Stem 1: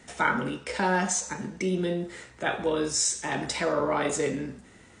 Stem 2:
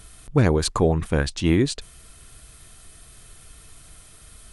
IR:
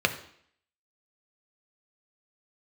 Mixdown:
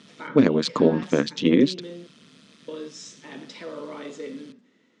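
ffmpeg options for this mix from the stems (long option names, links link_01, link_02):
-filter_complex "[0:a]volume=-11dB,asplit=3[link_01][link_02][link_03];[link_01]atrim=end=2.07,asetpts=PTS-STARTPTS,afade=type=out:start_time=2.066:duration=0.004:curve=hsin[link_04];[link_02]atrim=start=2.07:end=2.68,asetpts=PTS-STARTPTS,volume=0[link_05];[link_03]atrim=start=2.68,asetpts=PTS-STARTPTS,afade=type=in:duration=0.004:curve=hsin[link_06];[link_04][link_05][link_06]concat=n=3:v=0:a=1[link_07];[1:a]tremolo=f=150:d=0.889,volume=3dB[link_08];[link_07][link_08]amix=inputs=2:normalize=0,highpass=frequency=170:width=0.5412,highpass=frequency=170:width=1.3066,equalizer=frequency=260:width_type=q:width=4:gain=8,equalizer=frequency=470:width_type=q:width=4:gain=4,equalizer=frequency=770:width_type=q:width=4:gain=-9,equalizer=frequency=1500:width_type=q:width=4:gain=-4,equalizer=frequency=3400:width_type=q:width=4:gain=4,lowpass=frequency=5700:width=0.5412,lowpass=frequency=5700:width=1.3066"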